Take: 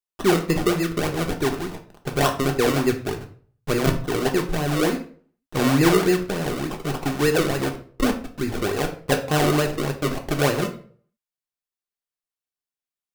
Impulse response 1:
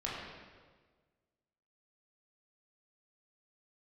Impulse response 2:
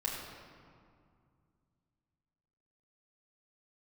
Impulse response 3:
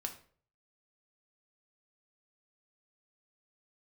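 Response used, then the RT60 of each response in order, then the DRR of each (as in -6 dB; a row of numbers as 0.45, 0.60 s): 3; 1.5, 2.2, 0.50 s; -6.5, -3.0, 3.0 dB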